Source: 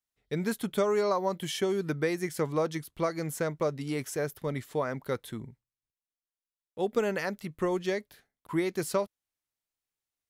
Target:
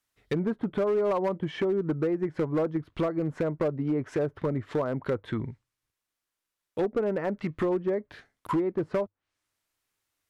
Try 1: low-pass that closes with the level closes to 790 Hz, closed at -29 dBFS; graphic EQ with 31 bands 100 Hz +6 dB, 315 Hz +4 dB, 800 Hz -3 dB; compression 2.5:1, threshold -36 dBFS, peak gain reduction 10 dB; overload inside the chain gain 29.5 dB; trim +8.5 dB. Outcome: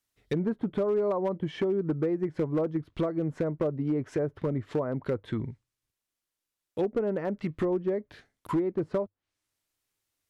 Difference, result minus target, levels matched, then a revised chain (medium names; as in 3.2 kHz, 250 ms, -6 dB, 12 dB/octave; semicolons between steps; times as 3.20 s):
1 kHz band -2.5 dB
low-pass that closes with the level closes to 790 Hz, closed at -29 dBFS; graphic EQ with 31 bands 100 Hz +6 dB, 315 Hz +4 dB, 800 Hz -3 dB; compression 2.5:1, threshold -36 dBFS, peak gain reduction 10 dB; peaking EQ 1.3 kHz +5 dB 2.1 oct; overload inside the chain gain 29.5 dB; trim +8.5 dB